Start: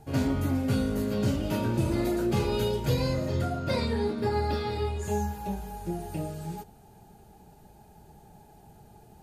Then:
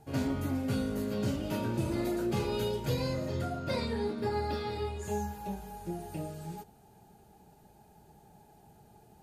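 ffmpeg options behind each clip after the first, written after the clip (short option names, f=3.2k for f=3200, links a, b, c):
-af "lowshelf=f=60:g=-9.5,volume=-4dB"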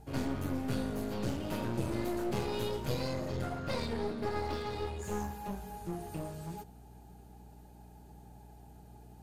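-af "aeval=exprs='val(0)+0.00224*(sin(2*PI*60*n/s)+sin(2*PI*2*60*n/s)/2+sin(2*PI*3*60*n/s)/3+sin(2*PI*4*60*n/s)/4+sin(2*PI*5*60*n/s)/5)':c=same,aeval=exprs='clip(val(0),-1,0.0106)':c=same"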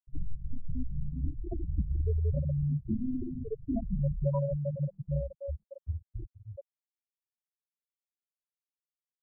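-af "afftfilt=real='re*gte(hypot(re,im),0.0708)':imag='im*gte(hypot(re,im),0.0708)':win_size=1024:overlap=0.75,highpass=f=200:t=q:w=0.5412,highpass=f=200:t=q:w=1.307,lowpass=f=3.3k:t=q:w=0.5176,lowpass=f=3.3k:t=q:w=0.7071,lowpass=f=3.3k:t=q:w=1.932,afreqshift=-270,volume=8.5dB"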